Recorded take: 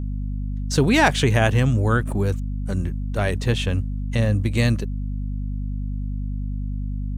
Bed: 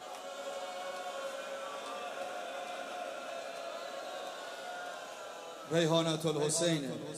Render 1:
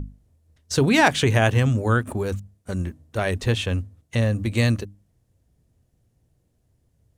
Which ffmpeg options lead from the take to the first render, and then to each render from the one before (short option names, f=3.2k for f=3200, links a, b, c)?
-af "bandreject=f=50:t=h:w=6,bandreject=f=100:t=h:w=6,bandreject=f=150:t=h:w=6,bandreject=f=200:t=h:w=6,bandreject=f=250:t=h:w=6,bandreject=f=300:t=h:w=6"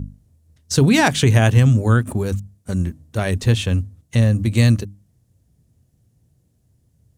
-af "highpass=f=180:p=1,bass=f=250:g=13,treble=f=4k:g=6"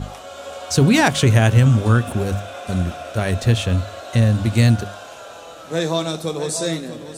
-filter_complex "[1:a]volume=8dB[a];[0:a][a]amix=inputs=2:normalize=0"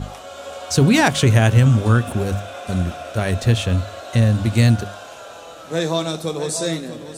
-af anull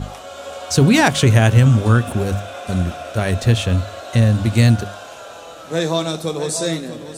-af "volume=1.5dB"